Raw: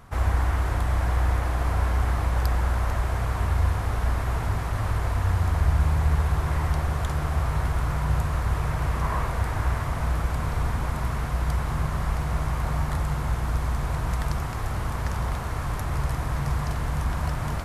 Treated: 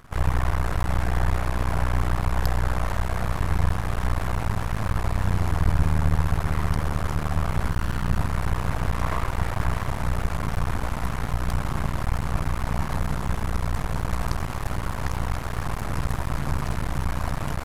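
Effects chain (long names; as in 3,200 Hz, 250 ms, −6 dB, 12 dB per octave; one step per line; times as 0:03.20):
0:07.71–0:08.18: lower of the sound and its delayed copy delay 0.69 ms
half-wave rectification
level +4 dB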